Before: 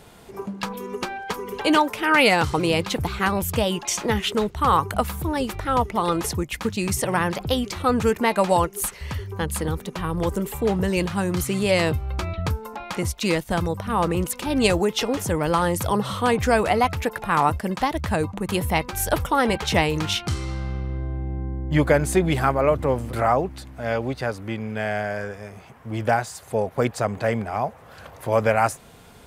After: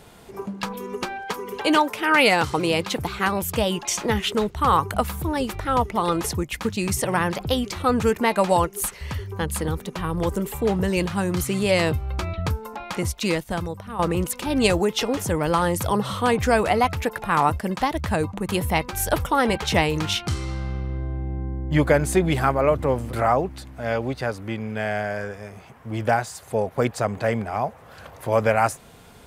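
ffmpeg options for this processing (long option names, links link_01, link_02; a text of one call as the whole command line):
ffmpeg -i in.wav -filter_complex "[0:a]asettb=1/sr,asplit=3[link_01][link_02][link_03];[link_01]atrim=end=1.264[link_04];[link_02]atrim=start=1.26:end=3.59,asetpts=PTS-STARTPTS,afade=type=in:duration=0.004:curve=qsin,afade=type=out:start_time=2.326:duration=0.004:curve=qsin,lowshelf=frequency=91:gain=-10.5[link_05];[link_03]atrim=start=3.586[link_06];[link_04][link_05]acrossfade=duration=0.004:curve1=hsin:curve2=qsin[link_07];[link_07][link_06]acrossfade=duration=0.004:curve1=qsin:curve2=hsin,asplit=2[link_08][link_09];[link_08]atrim=end=13.99,asetpts=PTS-STARTPTS,afade=type=out:start_time=13.18:duration=0.81:silence=0.281838[link_10];[link_09]atrim=start=13.99,asetpts=PTS-STARTPTS,afade=type=in:duration=0.004:curve=hsin:silence=0.281838[link_11];[link_10][link_11]concat=n=2:v=0:a=1" out.wav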